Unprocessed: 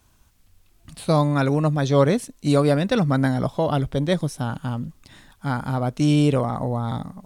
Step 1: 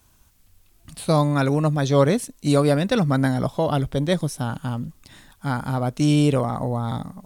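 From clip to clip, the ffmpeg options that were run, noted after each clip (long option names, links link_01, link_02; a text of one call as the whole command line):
ffmpeg -i in.wav -af "highshelf=frequency=7800:gain=6.5" out.wav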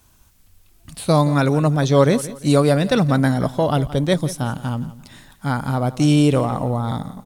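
ffmpeg -i in.wav -af "aecho=1:1:172|344|516:0.15|0.0494|0.0163,volume=3dB" out.wav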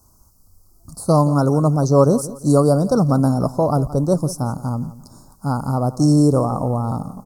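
ffmpeg -i in.wav -af "asuperstop=centerf=2500:order=12:qfactor=0.74,volume=1dB" out.wav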